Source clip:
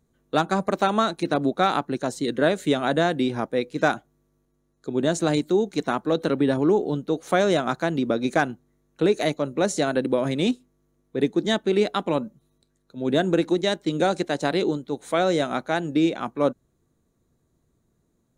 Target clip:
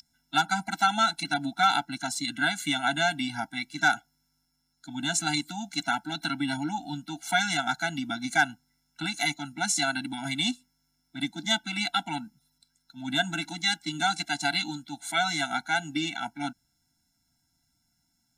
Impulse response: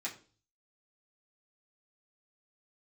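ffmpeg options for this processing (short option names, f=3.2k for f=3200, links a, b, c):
-af "tiltshelf=f=930:g=-9.5,aeval=exprs='val(0)+0.0398*sin(2*PI*5200*n/s)':c=same,afftfilt=real='re*eq(mod(floor(b*sr/1024/330),2),0)':imag='im*eq(mod(floor(b*sr/1024/330),2),0)':win_size=1024:overlap=0.75"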